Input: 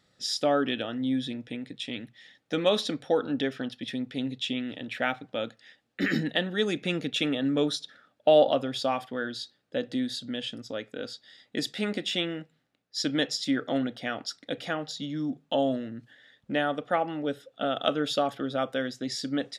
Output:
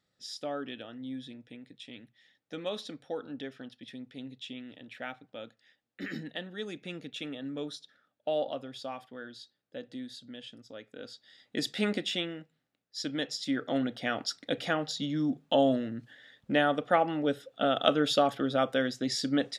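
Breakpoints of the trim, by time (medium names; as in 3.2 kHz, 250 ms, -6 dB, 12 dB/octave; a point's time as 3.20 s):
10.70 s -11.5 dB
11.86 s +1 dB
12.37 s -6.5 dB
13.22 s -6.5 dB
14.19 s +1.5 dB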